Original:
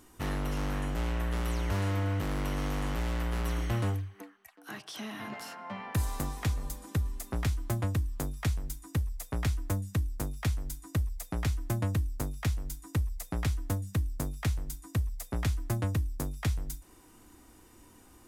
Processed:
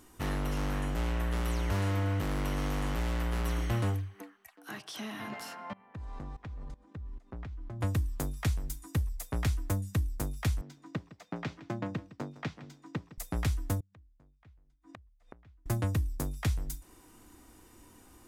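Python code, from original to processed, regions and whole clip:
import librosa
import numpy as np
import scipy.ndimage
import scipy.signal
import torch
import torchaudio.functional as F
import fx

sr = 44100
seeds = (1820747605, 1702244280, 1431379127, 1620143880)

y = fx.chain(x, sr, fx.spacing_loss(db_at_10k=30),
    fx.level_steps(step_db=20), at=(5.73, 7.81))
y = fx.chain(y, sr, fx.highpass(hz=150.0, slope=24),
    fx.air_absorb(metres=190.0),
    fx.echo_single(ms=160, db=-16.5), at=(10.61, 13.18))
y = fx.chain(y, sr, fx.lowpass(hz=2700.0, slope=12),
    fx.gate_flip(shuts_db=-34.0, range_db=-29), at=(13.8, 15.66))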